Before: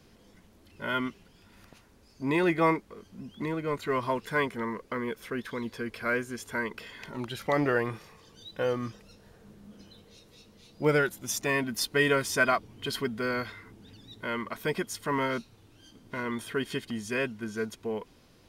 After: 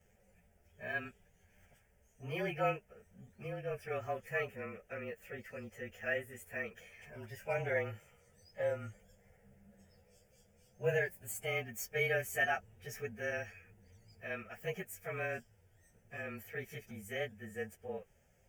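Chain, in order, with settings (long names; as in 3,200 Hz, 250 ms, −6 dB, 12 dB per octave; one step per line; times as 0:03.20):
partials spread apart or drawn together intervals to 109%
phaser with its sweep stopped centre 1,100 Hz, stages 6
level −4 dB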